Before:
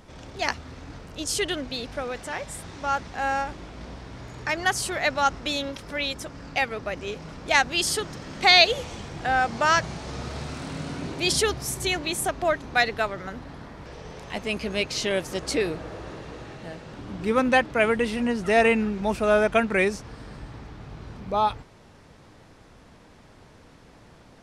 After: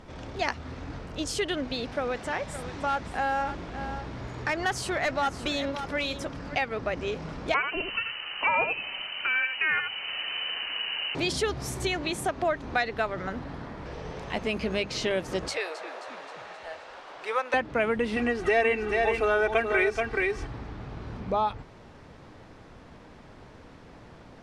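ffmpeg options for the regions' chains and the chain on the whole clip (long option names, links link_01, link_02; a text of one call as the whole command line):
ffmpeg -i in.wav -filter_complex "[0:a]asettb=1/sr,asplit=3[link_01][link_02][link_03];[link_01]atrim=end=1.934[link_04];[link_02]atrim=start=1.93:end=6.55,asetpts=PTS-STARTPTS,afade=type=in:duration=0.004:curve=qsin,afade=type=out:start_time=4.616:duration=0.004:curve=qsin,asoftclip=type=hard:threshold=-20.5dB,aecho=1:1:566:0.224,atrim=end_sample=203742[link_05];[link_03]atrim=start=6.546[link_06];[link_04][link_05]acrossfade=duration=0.004:curve1=hsin:curve2=qsin[link_07];[link_07][link_06]acrossfade=duration=0.004:curve1=qsin:curve2=hsin,asettb=1/sr,asplit=3[link_08][link_09][link_10];[link_08]atrim=end=7.544[link_11];[link_09]atrim=start=7.54:end=11.15,asetpts=PTS-STARTPTS,afade=type=in:duration=0.004:curve=qsin,afade=type=out:start_time=3.606:duration=0.004:curve=qsin,aecho=1:1:82:0.398,atrim=end_sample=159201,lowpass=frequency=2600:width_type=q:width=0.5098,lowpass=frequency=2600:width_type=q:width=0.6013,lowpass=frequency=2600:width_type=q:width=0.9,lowpass=frequency=2600:width_type=q:width=2.563,afreqshift=-3100[link_12];[link_10]atrim=start=11.146[link_13];[link_11][link_12]acrossfade=duration=0.004:curve1=hsin:curve2=qsin[link_14];[link_14][link_13]acrossfade=duration=0.004:curve1=qsin:curve2=hsin,asettb=1/sr,asplit=3[link_15][link_16][link_17];[link_15]atrim=end=15.484[link_18];[link_16]atrim=start=15.48:end=17.54,asetpts=PTS-STARTPTS,afade=type=in:duration=0.004:curve=qsin,afade=type=out:start_time=2.056:duration=0.004:curve=qsin,highpass=frequency=590:width=0.5412,highpass=frequency=590:width=1.3066,asplit=7[link_19][link_20][link_21][link_22][link_23][link_24][link_25];[link_20]adelay=264,afreqshift=-98,volume=-15.5dB[link_26];[link_21]adelay=528,afreqshift=-196,volume=-20.1dB[link_27];[link_22]adelay=792,afreqshift=-294,volume=-24.7dB[link_28];[link_23]adelay=1056,afreqshift=-392,volume=-29.2dB[link_29];[link_24]adelay=1320,afreqshift=-490,volume=-33.8dB[link_30];[link_25]adelay=1584,afreqshift=-588,volume=-38.4dB[link_31];[link_19][link_26][link_27][link_28][link_29][link_30][link_31]amix=inputs=7:normalize=0,atrim=end_sample=90846[link_32];[link_17]atrim=start=17.536[link_33];[link_18][link_32]acrossfade=duration=0.004:curve1=hsin:curve2=qsin[link_34];[link_34][link_33]acrossfade=duration=0.004:curve1=qsin:curve2=hsin,asettb=1/sr,asplit=3[link_35][link_36][link_37];[link_35]atrim=end=18.164[link_38];[link_36]atrim=start=18.16:end=20.47,asetpts=PTS-STARTPTS,afade=type=in:duration=0.004:curve=qsin,afade=type=out:start_time=2.306:duration=0.004:curve=qsin,equalizer=frequency=2100:width=0.98:gain=5,aecho=1:1:2.6:0.87,atrim=end_sample=101871,aecho=1:1:428:0.473,atrim=end_sample=101871[link_39];[link_37]atrim=start=20.466[link_40];[link_38][link_39]acrossfade=duration=0.004:curve1=hsin:curve2=qsin[link_41];[link_41][link_40]acrossfade=duration=0.004:curve1=qsin:curve2=hsin,bandreject=frequency=50:width_type=h:width=6,bandreject=frequency=100:width_type=h:width=6,bandreject=frequency=150:width_type=h:width=6,bandreject=frequency=200:width_type=h:width=6,acompressor=threshold=-28dB:ratio=2.5,aemphasis=mode=reproduction:type=50kf,volume=3dB" out.wav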